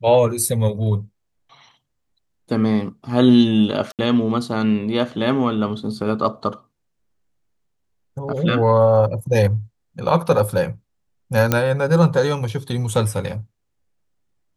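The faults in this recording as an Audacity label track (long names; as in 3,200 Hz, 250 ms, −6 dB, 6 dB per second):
3.920000	3.990000	drop-out 68 ms
11.520000	11.520000	click −2 dBFS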